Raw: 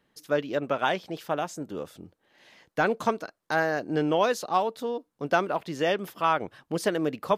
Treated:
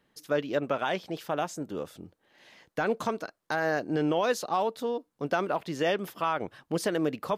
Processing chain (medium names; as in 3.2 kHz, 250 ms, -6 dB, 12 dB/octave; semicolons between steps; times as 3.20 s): peak limiter -17 dBFS, peak gain reduction 6 dB